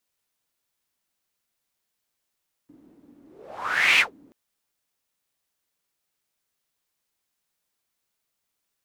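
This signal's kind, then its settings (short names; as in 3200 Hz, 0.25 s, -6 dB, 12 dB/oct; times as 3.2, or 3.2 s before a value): whoosh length 1.63 s, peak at 1.3, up 0.82 s, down 0.14 s, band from 280 Hz, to 2500 Hz, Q 6.2, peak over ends 36.5 dB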